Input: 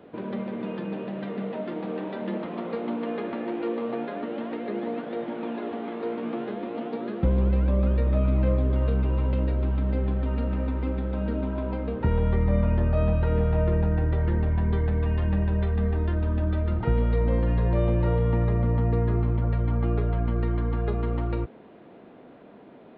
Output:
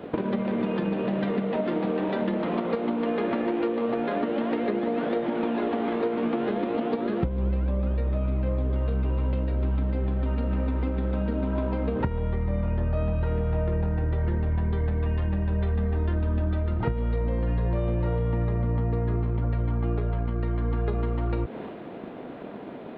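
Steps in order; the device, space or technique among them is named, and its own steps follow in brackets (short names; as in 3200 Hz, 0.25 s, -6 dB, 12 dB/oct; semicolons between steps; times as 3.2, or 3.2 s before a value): drum-bus smash (transient shaper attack +9 dB, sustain +5 dB; compressor 10:1, threshold -30 dBFS, peak gain reduction 20 dB; soft clip -23.5 dBFS, distortion -24 dB); gain +8.5 dB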